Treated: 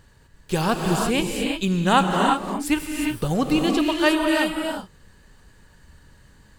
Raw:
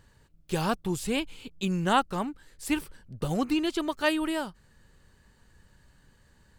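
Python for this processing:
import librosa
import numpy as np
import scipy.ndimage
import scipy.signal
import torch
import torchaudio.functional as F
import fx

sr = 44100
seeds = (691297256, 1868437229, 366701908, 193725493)

y = fx.rev_gated(x, sr, seeds[0], gate_ms=390, shape='rising', drr_db=1.0)
y = y * librosa.db_to_amplitude(5.5)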